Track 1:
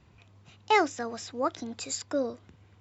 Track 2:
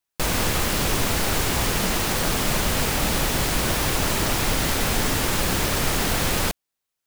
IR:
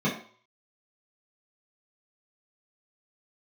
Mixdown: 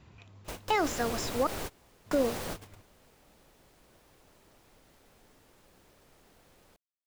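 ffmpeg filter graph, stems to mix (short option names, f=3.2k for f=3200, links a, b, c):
-filter_complex "[0:a]acontrast=25,volume=-2dB,asplit=3[a][b][c];[a]atrim=end=1.47,asetpts=PTS-STARTPTS,afade=t=out:st=1.466:d=0.004:c=hsin[d];[b]atrim=start=1.47:end=2.06,asetpts=PTS-STARTPTS,volume=0[e];[c]atrim=start=2.06,asetpts=PTS-STARTPTS,afade=t=in:d=0.004:c=hsin[f];[d][e][f]concat=n=3:v=0:a=1,asplit=2[g][h];[1:a]equalizer=f=500:t=o:w=1.9:g=6,adelay=250,volume=-16dB[i];[h]apad=whole_len=322641[j];[i][j]sidechaingate=range=-25dB:threshold=-50dB:ratio=16:detection=peak[k];[g][k]amix=inputs=2:normalize=0,alimiter=limit=-17.5dB:level=0:latency=1:release=42"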